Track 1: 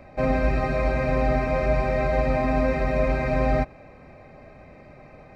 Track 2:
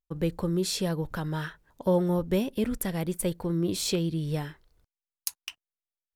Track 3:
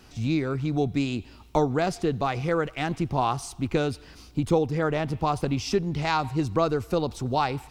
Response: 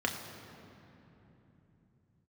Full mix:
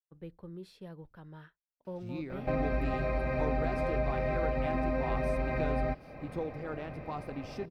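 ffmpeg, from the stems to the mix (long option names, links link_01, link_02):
-filter_complex "[0:a]adelay=2300,volume=1.5dB[link_01];[1:a]lowpass=frequency=3100:poles=1,volume=-17.5dB[link_02];[2:a]adelay=1850,volume=-16dB,asplit=2[link_03][link_04];[link_04]volume=-18dB[link_05];[link_01][link_02]amix=inputs=2:normalize=0,agate=range=-33dB:threshold=-48dB:ratio=3:detection=peak,acompressor=threshold=-33dB:ratio=2.5,volume=0dB[link_06];[3:a]atrim=start_sample=2205[link_07];[link_05][link_07]afir=irnorm=-1:irlink=0[link_08];[link_03][link_06][link_08]amix=inputs=3:normalize=0,equalizer=frequency=6900:width=1.5:gain=-11.5"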